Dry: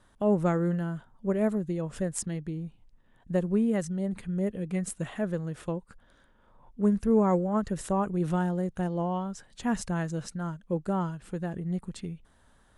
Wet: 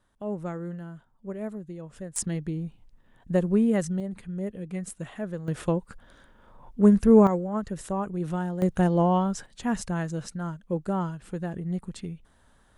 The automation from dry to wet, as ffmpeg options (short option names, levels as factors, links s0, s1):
-af "asetnsamples=n=441:p=0,asendcmd='2.16 volume volume 3.5dB;4 volume volume -3dB;5.48 volume volume 7dB;7.27 volume volume -2dB;8.62 volume volume 8dB;9.46 volume volume 1dB',volume=0.398"